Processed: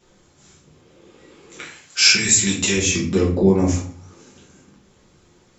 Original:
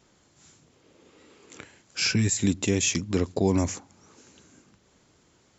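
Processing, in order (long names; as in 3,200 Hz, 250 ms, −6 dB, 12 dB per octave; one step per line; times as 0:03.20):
0:01.59–0:02.76: tilt shelving filter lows −9 dB, about 740 Hz
0:03.26–0:03.66: low-pass filter 1,600 Hz 6 dB per octave
rectangular room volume 44 cubic metres, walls mixed, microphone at 1.2 metres
level −1 dB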